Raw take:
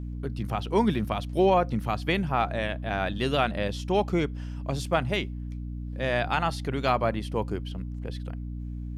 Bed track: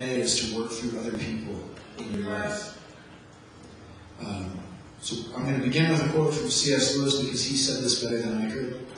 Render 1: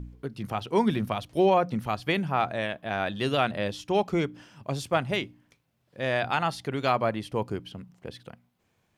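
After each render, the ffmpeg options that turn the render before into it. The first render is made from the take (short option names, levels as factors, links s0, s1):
-af "bandreject=f=60:t=h:w=4,bandreject=f=120:t=h:w=4,bandreject=f=180:t=h:w=4,bandreject=f=240:t=h:w=4,bandreject=f=300:t=h:w=4"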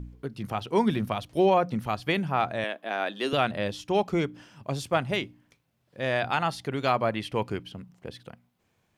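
-filter_complex "[0:a]asettb=1/sr,asplit=3[s0][s1][s2];[s0]atrim=end=2.644[s3];[s1]atrim=start=2.64:end=3.33,asetpts=PTS-STARTPTS,afade=t=in:d=0.004:c=qsin,afade=t=out:st=0.686:d=0.004:c=qsin,highpass=f=250:w=0.5412,highpass=f=250:w=1.3066[s4];[s2]atrim=start=3.326[s5];[s3][s4]acrossfade=d=0.004:c1=hsin:c2=qsin[s6];[s6][s5]acrossfade=d=0.004:c1=qsin:c2=hsin,asettb=1/sr,asplit=3[s7][s8][s9];[s7]atrim=end=7.154[s10];[s8]atrim=start=7.15:end=7.63,asetpts=PTS-STARTPTS,afade=t=in:d=0.004:c=qsin,afade=t=out:st=0.476:d=0.004:c=qsin,equalizer=f=2400:t=o:w=1.5:g=8[s11];[s9]atrim=start=7.626[s12];[s10][s11]acrossfade=d=0.004:c1=hsin:c2=qsin[s13];[s13][s12]acrossfade=d=0.004:c1=qsin:c2=hsin"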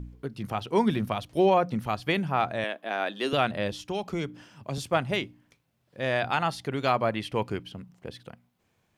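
-filter_complex "[0:a]asettb=1/sr,asplit=3[s0][s1][s2];[s0]atrim=end=3.724[s3];[s1]atrim=start=3.72:end=4.78,asetpts=PTS-STARTPTS,afade=t=in:d=0.004:c=qsin,afade=t=out:st=1.056:d=0.004:c=qsin,acrossover=split=130|3000[s4][s5][s6];[s5]acompressor=threshold=0.0316:ratio=2.5:attack=3.2:release=140:knee=2.83:detection=peak[s7];[s4][s7][s6]amix=inputs=3:normalize=0[s8];[s2]atrim=start=4.776[s9];[s3][s8]acrossfade=d=0.004:c1=hsin:c2=qsin[s10];[s10][s9]acrossfade=d=0.004:c1=qsin:c2=hsin"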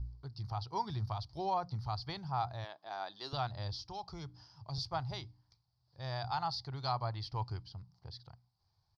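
-af "firequalizer=gain_entry='entry(110,0);entry(220,-26);entry(320,-19);entry(520,-22);entry(830,-5);entry(1600,-18);entry(2700,-24);entry(4700,7);entry(7500,-28)':delay=0.05:min_phase=1"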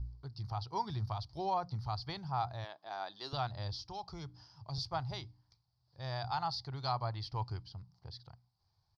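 -af anull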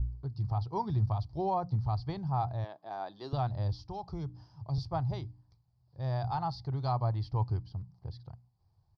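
-af "tiltshelf=f=1100:g=9,bandreject=f=1400:w=18"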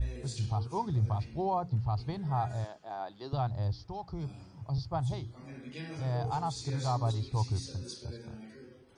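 -filter_complex "[1:a]volume=0.1[s0];[0:a][s0]amix=inputs=2:normalize=0"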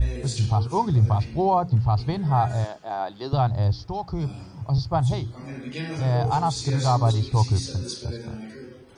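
-af "volume=3.35"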